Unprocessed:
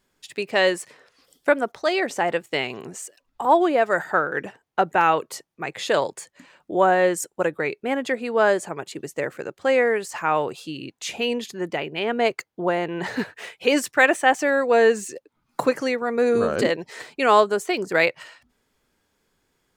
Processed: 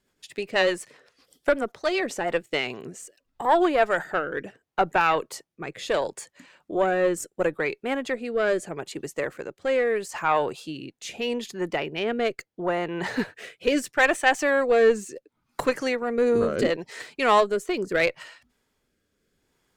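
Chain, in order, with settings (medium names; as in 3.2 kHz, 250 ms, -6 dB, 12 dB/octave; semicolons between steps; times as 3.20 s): Chebyshev shaper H 4 -20 dB, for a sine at -3.5 dBFS; rotary cabinet horn 8 Hz, later 0.75 Hz, at 1.84 s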